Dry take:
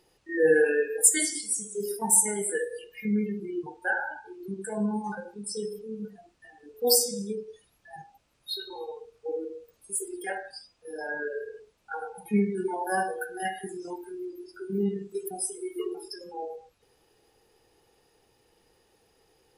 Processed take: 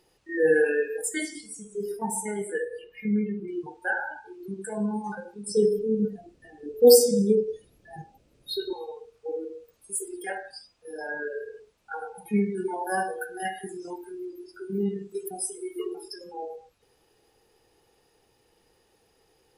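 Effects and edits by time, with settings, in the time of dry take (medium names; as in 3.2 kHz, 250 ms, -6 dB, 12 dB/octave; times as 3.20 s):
1.01–3.48 s: tone controls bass +2 dB, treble -13 dB
5.47–8.73 s: resonant low shelf 640 Hz +10.5 dB, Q 1.5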